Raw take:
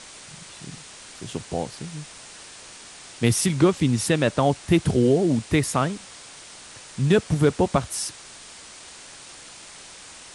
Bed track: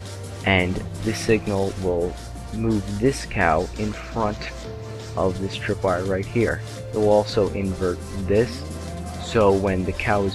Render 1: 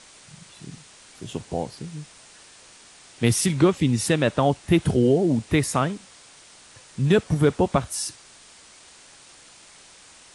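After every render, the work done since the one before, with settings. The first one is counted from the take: noise print and reduce 6 dB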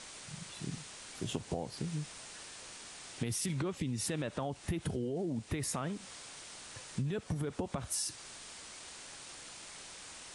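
peak limiter -16.5 dBFS, peak gain reduction 11 dB; compression 16:1, threshold -32 dBFS, peak gain reduction 13 dB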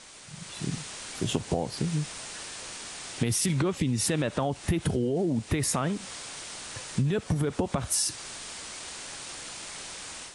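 level rider gain up to 9 dB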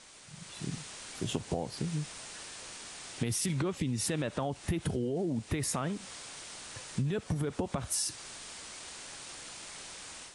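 trim -5.5 dB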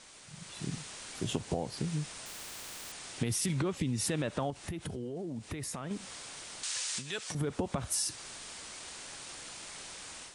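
2.26–2.92 s: spectrum-flattening compressor 10:1; 4.50–5.91 s: compression 2.5:1, threshold -38 dBFS; 6.63–7.35 s: frequency weighting ITU-R 468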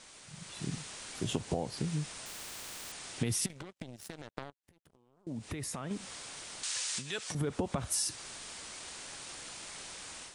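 3.46–5.27 s: power-law waveshaper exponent 3

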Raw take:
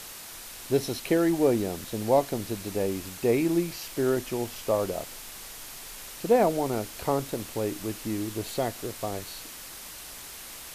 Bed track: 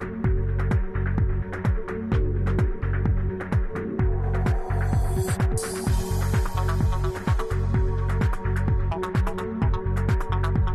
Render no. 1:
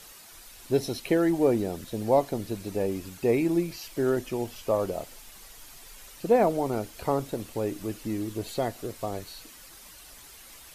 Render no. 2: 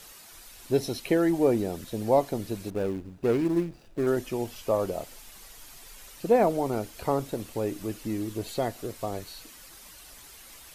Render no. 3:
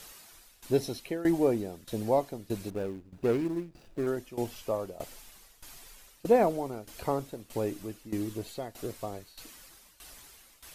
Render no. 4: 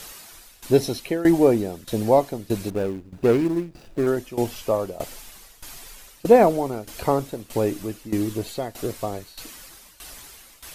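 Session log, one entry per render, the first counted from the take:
noise reduction 9 dB, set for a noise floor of -43 dBFS
2.70–4.07 s: median filter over 41 samples
tremolo saw down 1.6 Hz, depth 85%
trim +9 dB

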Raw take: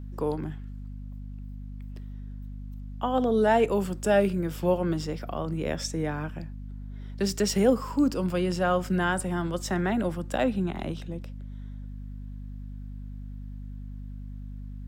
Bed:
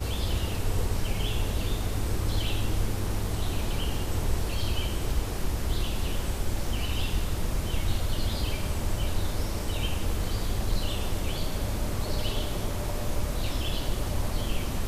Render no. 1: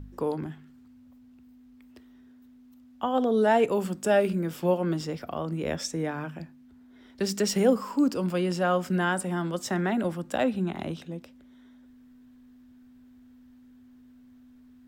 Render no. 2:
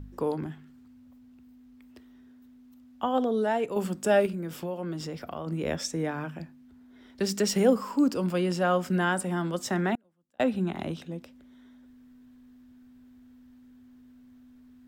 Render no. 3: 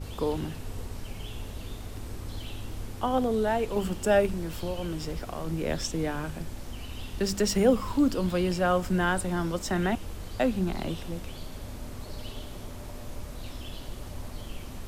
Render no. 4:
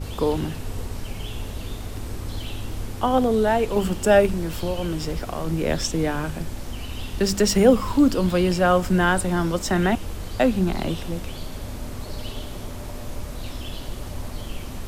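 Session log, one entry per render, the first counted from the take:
de-hum 50 Hz, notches 4
3.13–3.76 s: fade out quadratic, to -7 dB; 4.26–5.47 s: compression 3:1, threshold -32 dBFS; 9.95–10.40 s: inverted gate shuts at -34 dBFS, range -39 dB
add bed -10 dB
trim +6.5 dB

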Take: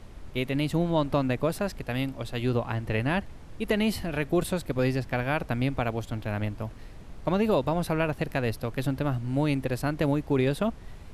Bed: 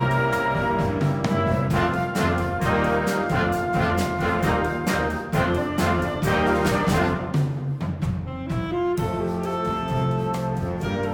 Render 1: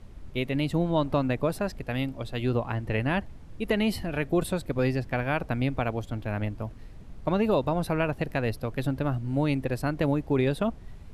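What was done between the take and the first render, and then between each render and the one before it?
noise reduction 6 dB, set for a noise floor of -44 dBFS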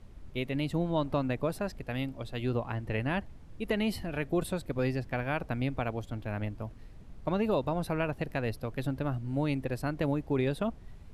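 trim -4.5 dB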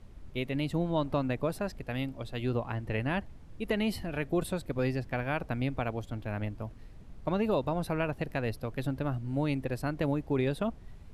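no audible change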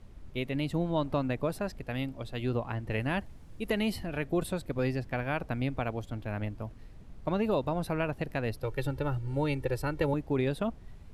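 2.90–3.90 s: treble shelf 6.2 kHz +7.5 dB; 8.62–10.14 s: comb 2.2 ms, depth 84%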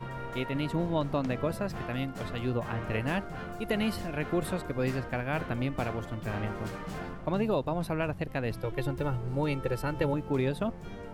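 add bed -18 dB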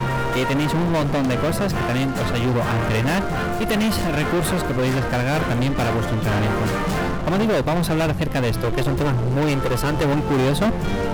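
waveshaping leveller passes 5; gain riding 2 s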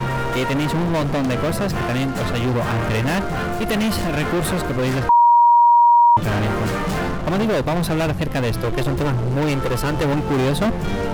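5.09–6.17 s: bleep 950 Hz -8.5 dBFS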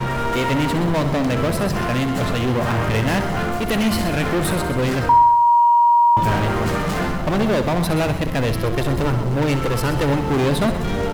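feedback delay 64 ms, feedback 57%, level -11 dB; bit-crushed delay 127 ms, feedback 35%, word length 7-bit, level -12 dB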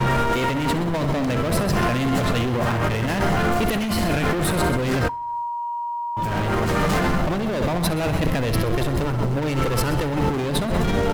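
compressor with a negative ratio -22 dBFS, ratio -1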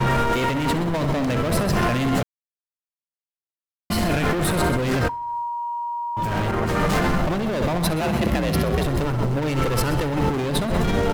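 2.23–3.90 s: mute; 6.51–7.01 s: three bands expanded up and down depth 100%; 8.01–8.86 s: frequency shift +51 Hz

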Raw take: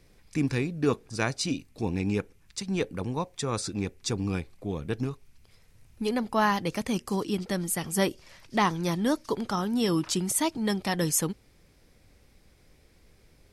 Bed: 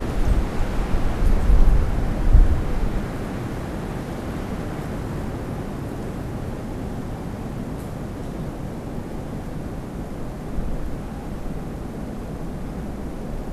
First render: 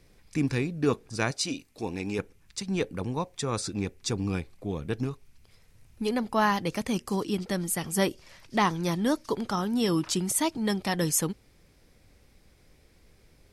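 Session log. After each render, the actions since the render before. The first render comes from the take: 1.31–2.19 s: tone controls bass -9 dB, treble +2 dB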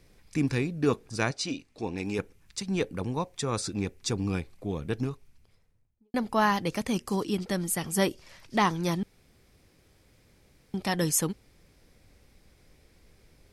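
1.29–1.98 s: distance through air 63 m; 4.99–6.14 s: studio fade out; 9.03–10.74 s: room tone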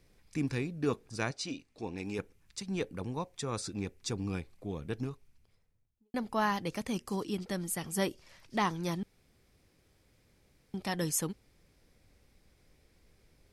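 trim -6 dB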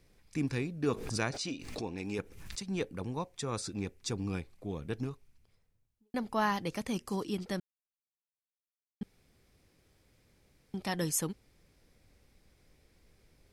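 0.94–2.59 s: swell ahead of each attack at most 50 dB/s; 7.60–9.01 s: mute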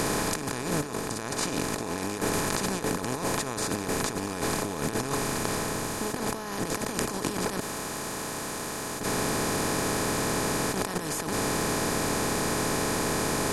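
spectral levelling over time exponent 0.2; compressor with a negative ratio -28 dBFS, ratio -0.5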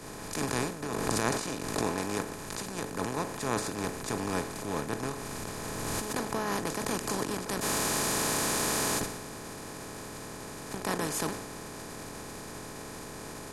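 compressor with a negative ratio -34 dBFS, ratio -1; three bands expanded up and down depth 100%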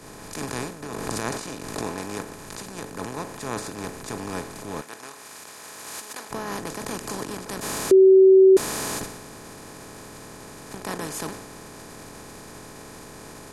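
4.81–6.31 s: high-pass 1.2 kHz 6 dB/octave; 7.91–8.57 s: bleep 381 Hz -9 dBFS

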